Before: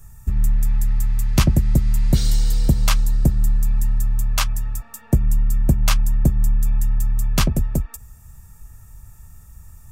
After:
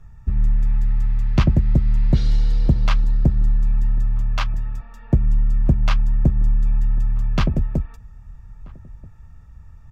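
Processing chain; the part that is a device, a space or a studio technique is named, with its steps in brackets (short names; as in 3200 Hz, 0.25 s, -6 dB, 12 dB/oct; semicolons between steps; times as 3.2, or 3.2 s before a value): shout across a valley (air absorption 240 m; outdoor echo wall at 220 m, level -24 dB)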